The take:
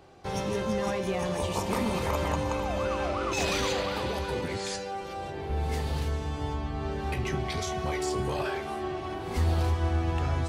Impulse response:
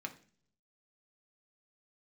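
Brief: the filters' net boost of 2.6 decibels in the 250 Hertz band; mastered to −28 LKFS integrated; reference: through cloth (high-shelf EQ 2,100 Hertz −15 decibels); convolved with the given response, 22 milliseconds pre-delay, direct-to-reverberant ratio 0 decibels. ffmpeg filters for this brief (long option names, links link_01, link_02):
-filter_complex "[0:a]equalizer=frequency=250:width_type=o:gain=4,asplit=2[link_01][link_02];[1:a]atrim=start_sample=2205,adelay=22[link_03];[link_02][link_03]afir=irnorm=-1:irlink=0,volume=0.5dB[link_04];[link_01][link_04]amix=inputs=2:normalize=0,highshelf=frequency=2100:gain=-15,volume=0.5dB"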